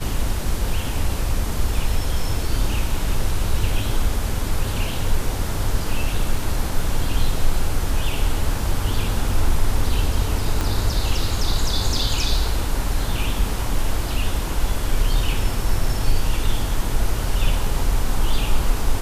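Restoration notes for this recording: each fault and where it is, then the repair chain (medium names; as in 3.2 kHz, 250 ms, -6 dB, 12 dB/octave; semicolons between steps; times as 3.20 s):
10.61 s: pop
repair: de-click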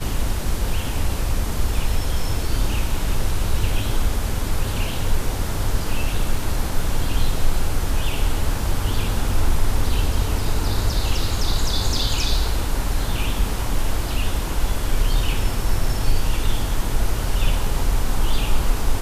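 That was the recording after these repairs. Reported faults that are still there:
10.61 s: pop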